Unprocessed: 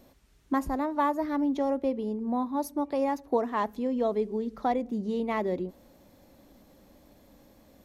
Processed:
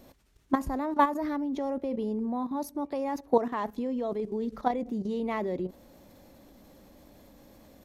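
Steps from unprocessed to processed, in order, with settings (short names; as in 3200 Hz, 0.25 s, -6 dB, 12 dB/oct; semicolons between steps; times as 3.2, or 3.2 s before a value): level quantiser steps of 12 dB; gain +5.5 dB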